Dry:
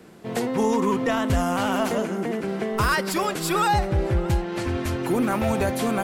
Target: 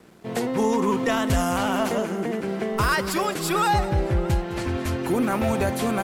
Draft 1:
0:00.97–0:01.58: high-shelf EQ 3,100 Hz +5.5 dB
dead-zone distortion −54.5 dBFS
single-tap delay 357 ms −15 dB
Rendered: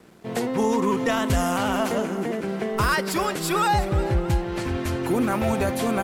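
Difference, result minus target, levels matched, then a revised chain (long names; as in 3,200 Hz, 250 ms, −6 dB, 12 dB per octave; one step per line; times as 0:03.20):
echo 148 ms late
0:00.97–0:01.58: high-shelf EQ 3,100 Hz +5.5 dB
dead-zone distortion −54.5 dBFS
single-tap delay 209 ms −15 dB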